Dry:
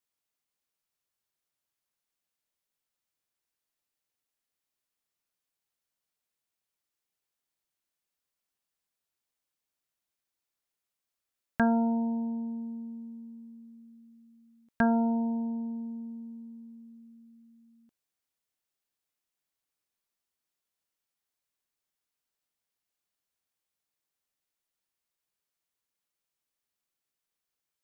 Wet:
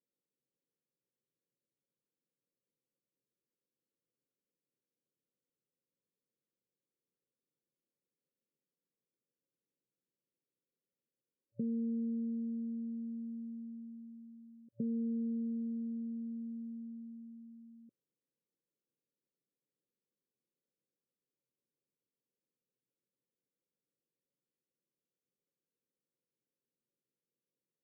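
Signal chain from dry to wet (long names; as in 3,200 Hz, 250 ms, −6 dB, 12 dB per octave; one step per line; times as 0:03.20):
downward compressor 2.5 to 1, threshold −46 dBFS, peak gain reduction 16 dB
brick-wall band-pass 110–580 Hz
level +5 dB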